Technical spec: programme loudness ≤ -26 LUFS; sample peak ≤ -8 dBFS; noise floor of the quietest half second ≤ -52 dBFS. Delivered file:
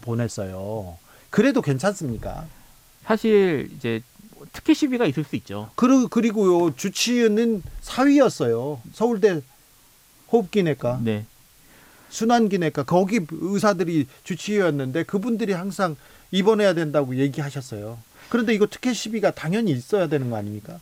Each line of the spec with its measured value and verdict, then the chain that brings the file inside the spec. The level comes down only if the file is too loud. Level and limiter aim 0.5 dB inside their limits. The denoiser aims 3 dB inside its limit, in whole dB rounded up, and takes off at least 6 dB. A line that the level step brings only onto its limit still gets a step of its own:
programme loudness -22.0 LUFS: fail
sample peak -5.5 dBFS: fail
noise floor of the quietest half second -54 dBFS: pass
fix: trim -4.5 dB

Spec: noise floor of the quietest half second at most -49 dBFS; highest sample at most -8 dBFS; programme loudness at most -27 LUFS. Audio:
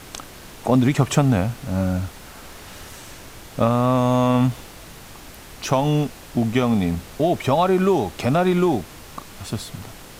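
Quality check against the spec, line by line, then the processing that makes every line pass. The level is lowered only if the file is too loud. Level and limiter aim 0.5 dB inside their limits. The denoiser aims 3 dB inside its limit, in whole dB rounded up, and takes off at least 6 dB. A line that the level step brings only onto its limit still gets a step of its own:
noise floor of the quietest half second -41 dBFS: fail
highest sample -4.5 dBFS: fail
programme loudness -20.5 LUFS: fail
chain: noise reduction 6 dB, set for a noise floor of -41 dBFS; trim -7 dB

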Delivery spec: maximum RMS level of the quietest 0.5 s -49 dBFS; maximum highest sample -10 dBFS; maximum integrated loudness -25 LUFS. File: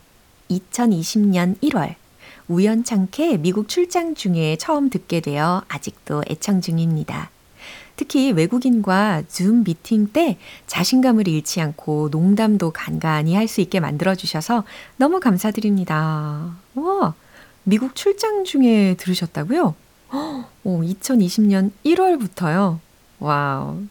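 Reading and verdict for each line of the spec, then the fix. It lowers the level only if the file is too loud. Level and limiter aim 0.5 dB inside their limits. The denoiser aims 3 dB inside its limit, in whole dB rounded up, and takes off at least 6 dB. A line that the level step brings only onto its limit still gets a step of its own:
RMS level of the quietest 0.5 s -52 dBFS: pass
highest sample -5.5 dBFS: fail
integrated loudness -19.5 LUFS: fail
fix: trim -6 dB

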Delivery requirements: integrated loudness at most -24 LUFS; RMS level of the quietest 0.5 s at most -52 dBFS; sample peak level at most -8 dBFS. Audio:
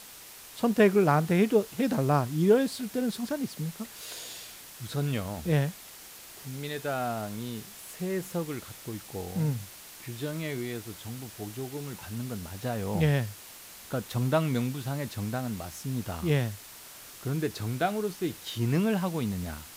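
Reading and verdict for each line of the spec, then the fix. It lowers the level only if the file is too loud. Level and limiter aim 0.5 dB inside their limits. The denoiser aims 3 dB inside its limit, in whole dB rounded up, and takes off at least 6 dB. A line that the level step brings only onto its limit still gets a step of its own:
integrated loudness -30.0 LUFS: pass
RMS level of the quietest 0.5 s -48 dBFS: fail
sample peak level -9.0 dBFS: pass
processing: noise reduction 7 dB, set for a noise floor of -48 dBFS

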